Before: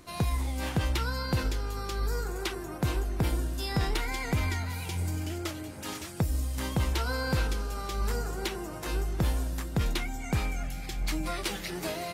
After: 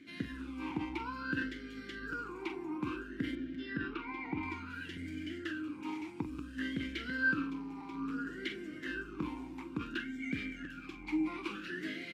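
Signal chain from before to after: bell 1600 Hz +10 dB 0.42 oct; doubler 44 ms -11 dB; in parallel at -3.5 dB: soft clip -31.5 dBFS, distortion -8 dB; 3.35–4.43 on the sum: air absorption 200 m; 7.34–8.27 AM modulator 220 Hz, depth 95%; crackling interface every 0.71 s, samples 256, repeat, from 0.7; vowel sweep i-u 0.58 Hz; gain +3.5 dB

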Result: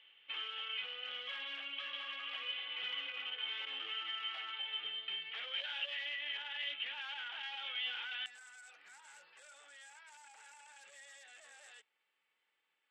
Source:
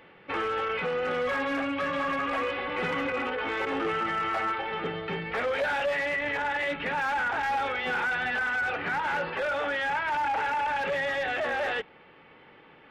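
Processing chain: band-pass 3100 Hz, Q 10, from 8.26 s 7800 Hz; gain +6 dB

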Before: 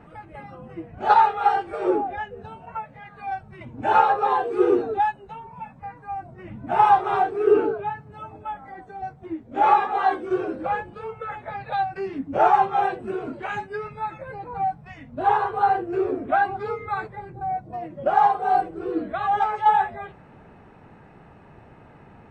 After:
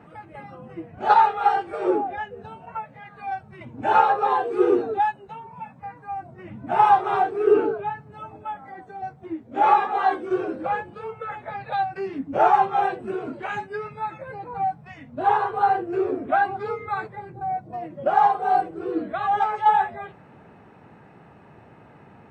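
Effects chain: HPF 95 Hz

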